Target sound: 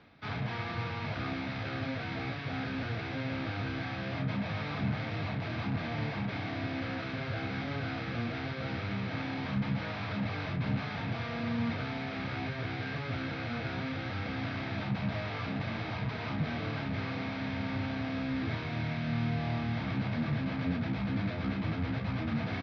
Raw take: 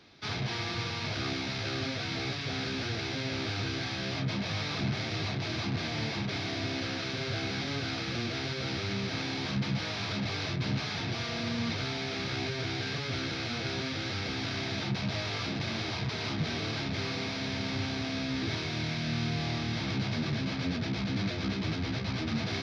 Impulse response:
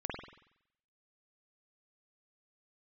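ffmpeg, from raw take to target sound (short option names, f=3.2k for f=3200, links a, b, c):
-filter_complex "[0:a]lowpass=2.1k,equalizer=f=370:t=o:w=0.24:g=-12,areverse,acompressor=mode=upward:threshold=-44dB:ratio=2.5,areverse,asplit=2[a][b];[b]adelay=34,volume=-11.5dB[c];[a][c]amix=inputs=2:normalize=0,asplit=2[d][e];[e]adelay=340,highpass=300,lowpass=3.4k,asoftclip=type=hard:threshold=-30.5dB,volume=-15dB[f];[d][f]amix=inputs=2:normalize=0"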